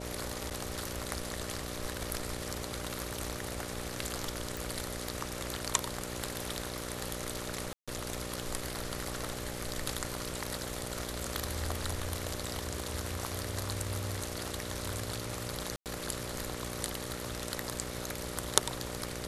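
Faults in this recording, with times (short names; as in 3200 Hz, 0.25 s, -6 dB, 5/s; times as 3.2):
buzz 60 Hz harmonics 10 -42 dBFS
0.5–0.51 gap 8.4 ms
4.57 pop
7.73–7.88 gap 0.146 s
15.76–15.86 gap 98 ms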